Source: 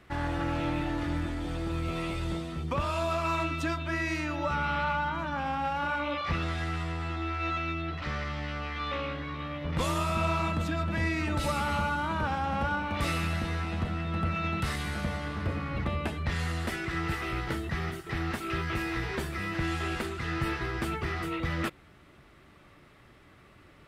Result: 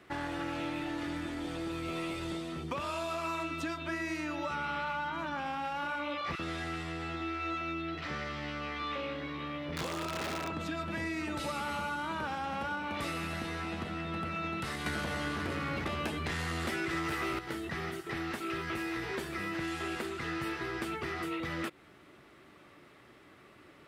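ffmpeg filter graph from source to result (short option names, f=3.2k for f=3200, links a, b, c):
-filter_complex "[0:a]asettb=1/sr,asplit=3[a][b][c];[a]atrim=end=6.354[d];[b]atrim=start=6.35:end=10.52,asetpts=PTS-STARTPTS,afade=t=in:d=0.004:c=qsin,afade=t=out:st=4.166:d=0.004:c=qsin,aeval=exprs='(mod(11.9*val(0)+1,2)-1)/11.9':c=same,acrossover=split=1100[e][f];[e]adelay=40[g];[g][f]amix=inputs=2:normalize=0,atrim=end_sample=183897[h];[c]atrim=start=10.516[i];[d][h]acrossfade=d=0.004:c1=hsin:c2=qsin[j];[j][i]acrossfade=d=0.004:c1=qsin:c2=hsin,asettb=1/sr,asplit=3[k][l][m];[k]atrim=end=14.864[n];[l]atrim=start=14.86:end=17.39,asetpts=PTS-STARTPTS,afade=t=in:d=0.004:c=qsin,afade=t=out:st=2.526:d=0.004:c=qsin,aeval=exprs='0.119*sin(PI/2*2.24*val(0)/0.119)':c=same,asplit=2[o][p];[p]adelay=13,volume=-10.5dB[q];[o][q]amix=inputs=2:normalize=0,atrim=end_sample=111573[r];[m]atrim=start=17.386[s];[n][r]acrossfade=d=0.004:c1=hsin:c2=qsin[t];[t][s]acrossfade=d=0.004:c1=qsin:c2=hsin,highpass=f=230:p=1,equalizer=f=340:w=1.5:g=4,acrossover=split=1700|6800[u][v][w];[u]acompressor=threshold=-35dB:ratio=4[x];[v]acompressor=threshold=-42dB:ratio=4[y];[w]acompressor=threshold=-54dB:ratio=4[z];[x][y][z]amix=inputs=3:normalize=0"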